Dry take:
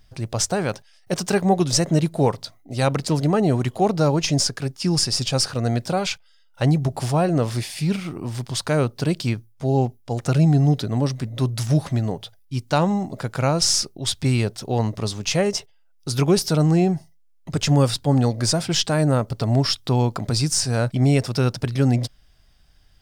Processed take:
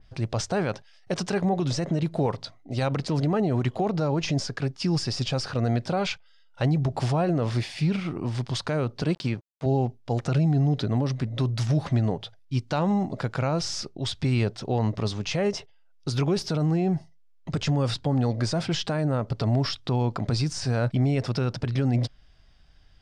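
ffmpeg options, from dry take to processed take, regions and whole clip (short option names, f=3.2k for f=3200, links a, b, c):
-filter_complex "[0:a]asettb=1/sr,asplit=3[a][b][c];[a]atrim=end=9.024[d];[b]atrim=start=9.02:end=9.66,asetpts=PTS-STARTPTS,afade=t=in:d=0.004:c=qsin,afade=t=out:st=0.636:d=0.004:c=qsin,agate=range=-33dB:threshold=-47dB:ratio=3:release=100:detection=peak,highpass=96,aeval=exprs='sgn(val(0))*max(abs(val(0))-0.00708,0)':c=same[e];[c]atrim=start=9.656[f];[d][e]acrossfade=d=0.004:c1=hsin:c2=qsin[g];[g][f]acrossfade=d=0.004:c1=qsin:c2=hsin,alimiter=limit=-16dB:level=0:latency=1:release=52,lowpass=5k,adynamicequalizer=threshold=0.00708:dfrequency=3100:dqfactor=0.7:tfrequency=3100:tqfactor=0.7:attack=5:release=100:ratio=0.375:range=1.5:mode=cutabove:tftype=highshelf"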